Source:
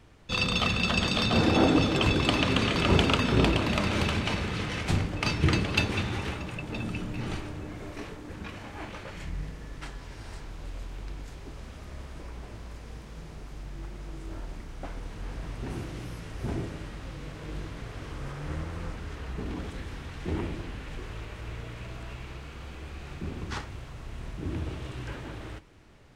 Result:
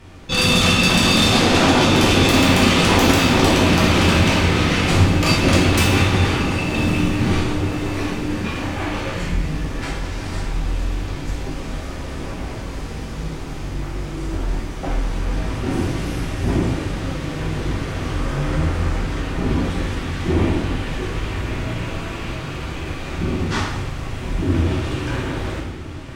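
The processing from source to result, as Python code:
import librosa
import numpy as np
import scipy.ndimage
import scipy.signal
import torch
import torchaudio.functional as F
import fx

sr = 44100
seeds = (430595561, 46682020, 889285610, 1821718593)

y = fx.fold_sine(x, sr, drive_db=15, ceiling_db=-7.5)
y = fx.echo_diffused(y, sr, ms=1129, feedback_pct=54, wet_db=-13.5)
y = fx.rev_plate(y, sr, seeds[0], rt60_s=0.82, hf_ratio=0.95, predelay_ms=0, drr_db=-4.5)
y = y * librosa.db_to_amplitude(-10.0)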